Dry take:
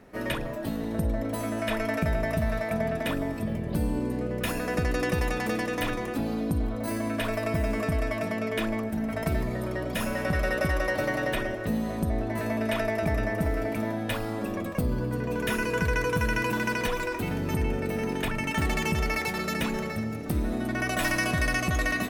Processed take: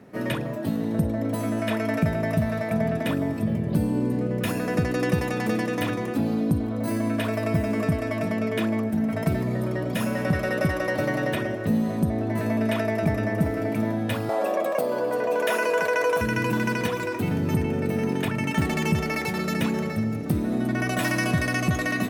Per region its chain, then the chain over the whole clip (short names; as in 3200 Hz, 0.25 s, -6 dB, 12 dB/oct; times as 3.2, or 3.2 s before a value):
14.29–16.21 resonant high-pass 620 Hz, resonance Q 3.2 + fast leveller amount 50%
whole clip: HPF 100 Hz 24 dB/oct; low shelf 330 Hz +8.5 dB